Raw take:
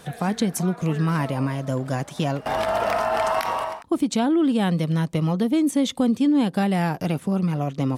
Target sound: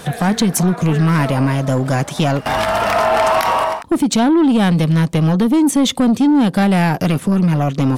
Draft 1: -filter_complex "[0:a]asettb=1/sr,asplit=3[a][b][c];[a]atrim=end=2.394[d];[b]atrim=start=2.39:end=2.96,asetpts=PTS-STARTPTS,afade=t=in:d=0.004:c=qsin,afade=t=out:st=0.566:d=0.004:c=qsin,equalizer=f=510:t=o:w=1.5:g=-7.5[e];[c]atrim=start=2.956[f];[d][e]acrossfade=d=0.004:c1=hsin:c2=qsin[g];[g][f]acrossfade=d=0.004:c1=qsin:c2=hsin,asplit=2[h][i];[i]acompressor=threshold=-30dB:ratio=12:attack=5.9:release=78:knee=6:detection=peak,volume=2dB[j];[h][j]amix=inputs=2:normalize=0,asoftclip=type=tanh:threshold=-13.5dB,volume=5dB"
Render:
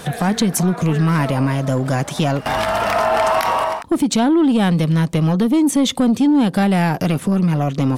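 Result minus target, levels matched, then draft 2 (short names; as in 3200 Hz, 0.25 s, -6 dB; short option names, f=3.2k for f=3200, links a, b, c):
compressor: peak gain reduction +10 dB
-filter_complex "[0:a]asettb=1/sr,asplit=3[a][b][c];[a]atrim=end=2.394[d];[b]atrim=start=2.39:end=2.96,asetpts=PTS-STARTPTS,afade=t=in:d=0.004:c=qsin,afade=t=out:st=0.566:d=0.004:c=qsin,equalizer=f=510:t=o:w=1.5:g=-7.5[e];[c]atrim=start=2.956[f];[d][e]acrossfade=d=0.004:c1=hsin:c2=qsin[g];[g][f]acrossfade=d=0.004:c1=qsin:c2=hsin,asplit=2[h][i];[i]acompressor=threshold=-19dB:ratio=12:attack=5.9:release=78:knee=6:detection=peak,volume=2dB[j];[h][j]amix=inputs=2:normalize=0,asoftclip=type=tanh:threshold=-13.5dB,volume=5dB"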